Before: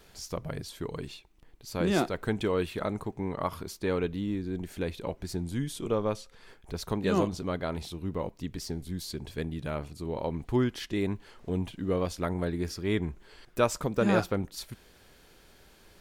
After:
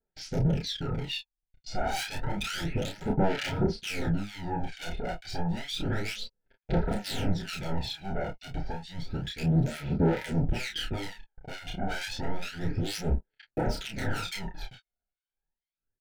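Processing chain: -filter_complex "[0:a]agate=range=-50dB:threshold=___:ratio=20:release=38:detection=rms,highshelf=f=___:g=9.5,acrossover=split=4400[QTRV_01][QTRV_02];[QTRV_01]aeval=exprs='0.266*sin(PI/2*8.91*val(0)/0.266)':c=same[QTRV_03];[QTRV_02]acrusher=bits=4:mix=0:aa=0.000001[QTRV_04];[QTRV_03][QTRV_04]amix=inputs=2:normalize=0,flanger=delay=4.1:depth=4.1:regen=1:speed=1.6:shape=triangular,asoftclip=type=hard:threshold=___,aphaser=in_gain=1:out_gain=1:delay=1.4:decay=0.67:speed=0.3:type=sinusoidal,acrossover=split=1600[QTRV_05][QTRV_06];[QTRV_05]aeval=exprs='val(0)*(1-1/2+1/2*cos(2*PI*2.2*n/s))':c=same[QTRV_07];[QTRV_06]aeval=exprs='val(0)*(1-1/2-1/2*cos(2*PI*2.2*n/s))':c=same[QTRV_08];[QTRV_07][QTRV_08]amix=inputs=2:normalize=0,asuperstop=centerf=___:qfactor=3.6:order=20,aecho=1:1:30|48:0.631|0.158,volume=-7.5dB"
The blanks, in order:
-48dB, 12000, -22dB, 1100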